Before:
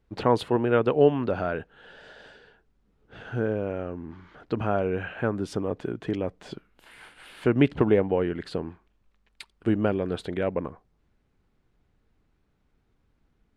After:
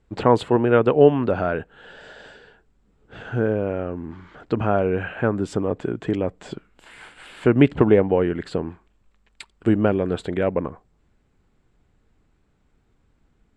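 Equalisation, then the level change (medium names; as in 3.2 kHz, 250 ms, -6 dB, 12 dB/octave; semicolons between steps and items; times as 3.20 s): dynamic bell 5.4 kHz, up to -4 dB, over -52 dBFS, Q 0.86; distance through air 51 m; peaking EQ 7.6 kHz +13.5 dB 0.24 oct; +5.5 dB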